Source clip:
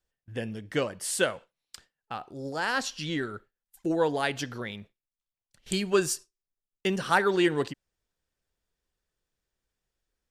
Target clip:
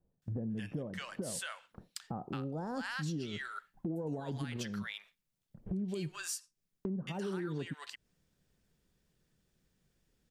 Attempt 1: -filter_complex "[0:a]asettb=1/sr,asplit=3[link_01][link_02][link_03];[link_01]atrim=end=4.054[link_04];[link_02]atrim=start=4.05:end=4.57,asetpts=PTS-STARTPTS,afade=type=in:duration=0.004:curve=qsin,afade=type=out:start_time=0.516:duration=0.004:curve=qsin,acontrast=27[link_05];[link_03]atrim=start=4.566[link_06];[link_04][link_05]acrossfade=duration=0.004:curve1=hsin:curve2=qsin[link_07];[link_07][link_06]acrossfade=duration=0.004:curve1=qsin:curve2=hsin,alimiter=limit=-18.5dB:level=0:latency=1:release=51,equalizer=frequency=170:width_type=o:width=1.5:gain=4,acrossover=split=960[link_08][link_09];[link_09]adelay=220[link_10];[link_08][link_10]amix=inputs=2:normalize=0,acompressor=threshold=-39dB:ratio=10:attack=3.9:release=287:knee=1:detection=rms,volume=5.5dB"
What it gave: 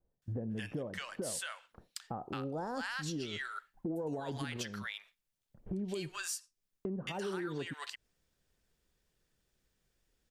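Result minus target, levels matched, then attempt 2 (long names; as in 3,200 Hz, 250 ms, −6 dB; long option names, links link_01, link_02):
125 Hz band −3.0 dB
-filter_complex "[0:a]asettb=1/sr,asplit=3[link_01][link_02][link_03];[link_01]atrim=end=4.054[link_04];[link_02]atrim=start=4.05:end=4.57,asetpts=PTS-STARTPTS,afade=type=in:duration=0.004:curve=qsin,afade=type=out:start_time=0.516:duration=0.004:curve=qsin,acontrast=27[link_05];[link_03]atrim=start=4.566[link_06];[link_04][link_05]acrossfade=duration=0.004:curve1=hsin:curve2=qsin[link_07];[link_07][link_06]acrossfade=duration=0.004:curve1=qsin:curve2=hsin,alimiter=limit=-18.5dB:level=0:latency=1:release=51,equalizer=frequency=170:width_type=o:width=1.5:gain=13.5,acrossover=split=960[link_08][link_09];[link_09]adelay=220[link_10];[link_08][link_10]amix=inputs=2:normalize=0,acompressor=threshold=-39dB:ratio=10:attack=3.9:release=287:knee=1:detection=rms,volume=5.5dB"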